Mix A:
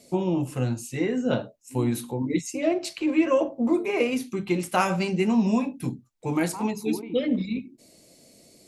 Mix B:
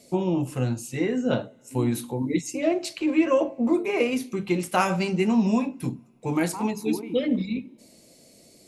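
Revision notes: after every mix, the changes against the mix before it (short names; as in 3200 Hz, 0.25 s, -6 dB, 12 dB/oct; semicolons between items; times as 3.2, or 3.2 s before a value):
reverb: on, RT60 2.6 s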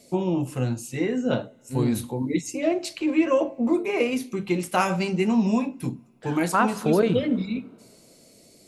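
second voice: remove vowel filter u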